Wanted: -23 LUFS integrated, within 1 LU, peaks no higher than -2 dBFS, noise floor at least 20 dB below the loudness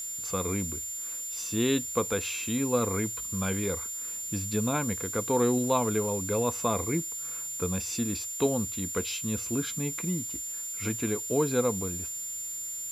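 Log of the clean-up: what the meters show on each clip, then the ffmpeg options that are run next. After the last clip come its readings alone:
steady tone 7.2 kHz; tone level -34 dBFS; noise floor -37 dBFS; noise floor target -50 dBFS; loudness -29.5 LUFS; peak level -12.0 dBFS; loudness target -23.0 LUFS
-> -af "bandreject=f=7200:w=30"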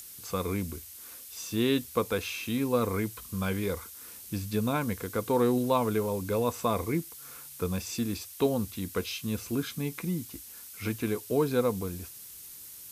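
steady tone not found; noise floor -47 dBFS; noise floor target -51 dBFS
-> -af "afftdn=nr=6:nf=-47"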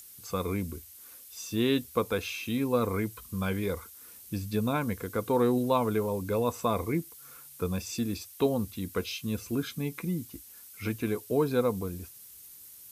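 noise floor -50 dBFS; noise floor target -51 dBFS
-> -af "afftdn=nr=6:nf=-50"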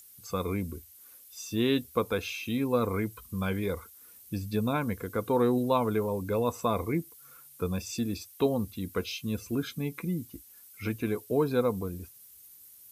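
noise floor -54 dBFS; loudness -31.0 LUFS; peak level -12.0 dBFS; loudness target -23.0 LUFS
-> -af "volume=2.51"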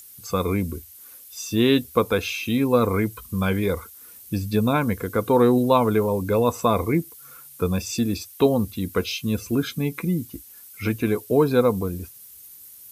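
loudness -23.0 LUFS; peak level -4.0 dBFS; noise floor -46 dBFS

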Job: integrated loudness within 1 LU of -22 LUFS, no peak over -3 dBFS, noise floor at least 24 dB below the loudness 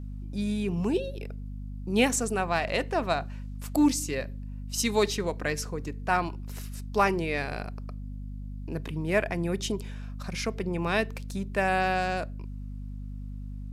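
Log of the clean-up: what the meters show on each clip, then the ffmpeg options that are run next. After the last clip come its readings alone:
hum 50 Hz; highest harmonic 250 Hz; hum level -35 dBFS; loudness -29.0 LUFS; peak level -10.0 dBFS; loudness target -22.0 LUFS
-> -af "bandreject=f=50:t=h:w=6,bandreject=f=100:t=h:w=6,bandreject=f=150:t=h:w=6,bandreject=f=200:t=h:w=6,bandreject=f=250:t=h:w=6"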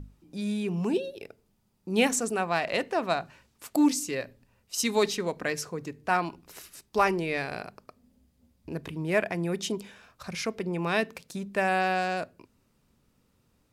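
hum not found; loudness -29.0 LUFS; peak level -10.5 dBFS; loudness target -22.0 LUFS
-> -af "volume=2.24"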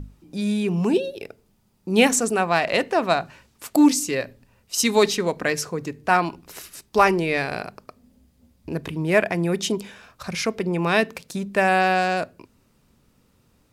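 loudness -22.0 LUFS; peak level -3.5 dBFS; noise floor -63 dBFS

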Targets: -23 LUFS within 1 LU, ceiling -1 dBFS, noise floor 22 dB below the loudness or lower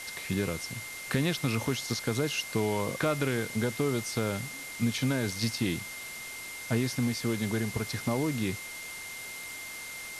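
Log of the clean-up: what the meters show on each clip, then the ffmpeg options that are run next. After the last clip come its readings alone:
steady tone 2.1 kHz; tone level -41 dBFS; noise floor -41 dBFS; noise floor target -54 dBFS; loudness -31.5 LUFS; peak level -14.0 dBFS; loudness target -23.0 LUFS
-> -af "bandreject=f=2100:w=30"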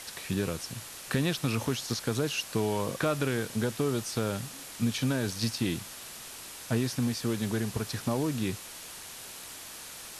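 steady tone not found; noise floor -44 dBFS; noise floor target -54 dBFS
-> -af "afftdn=nr=10:nf=-44"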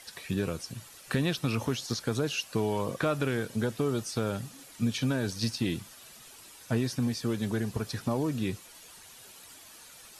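noise floor -51 dBFS; noise floor target -54 dBFS
-> -af "afftdn=nr=6:nf=-51"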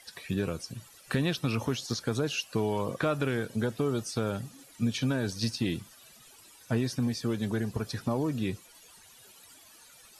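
noise floor -55 dBFS; loudness -31.5 LUFS; peak level -14.5 dBFS; loudness target -23.0 LUFS
-> -af "volume=2.66"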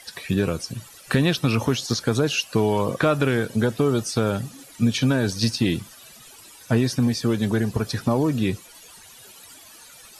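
loudness -23.0 LUFS; peak level -6.0 dBFS; noise floor -47 dBFS

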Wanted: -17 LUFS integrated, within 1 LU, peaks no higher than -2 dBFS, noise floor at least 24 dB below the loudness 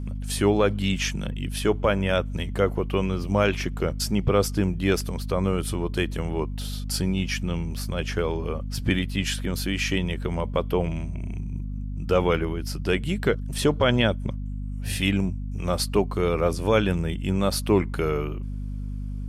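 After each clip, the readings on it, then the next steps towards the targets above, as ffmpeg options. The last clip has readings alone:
hum 50 Hz; highest harmonic 250 Hz; hum level -28 dBFS; loudness -25.5 LUFS; peak level -8.5 dBFS; loudness target -17.0 LUFS
-> -af "bandreject=f=50:t=h:w=6,bandreject=f=100:t=h:w=6,bandreject=f=150:t=h:w=6,bandreject=f=200:t=h:w=6,bandreject=f=250:t=h:w=6"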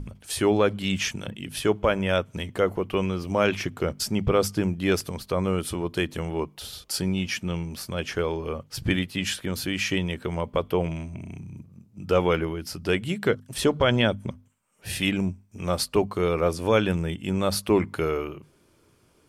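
hum not found; loudness -26.0 LUFS; peak level -8.5 dBFS; loudness target -17.0 LUFS
-> -af "volume=2.82,alimiter=limit=0.794:level=0:latency=1"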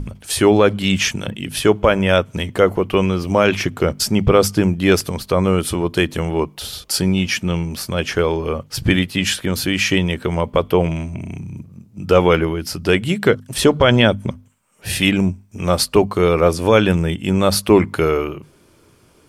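loudness -17.5 LUFS; peak level -2.0 dBFS; noise floor -52 dBFS

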